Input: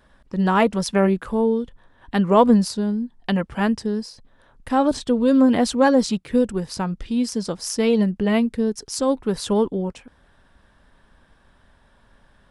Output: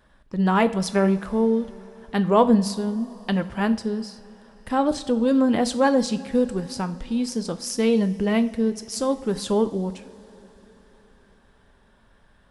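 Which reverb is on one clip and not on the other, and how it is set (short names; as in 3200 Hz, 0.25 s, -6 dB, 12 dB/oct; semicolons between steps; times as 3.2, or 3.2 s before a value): two-slope reverb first 0.43 s, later 4.7 s, from -18 dB, DRR 10 dB; gain -2.5 dB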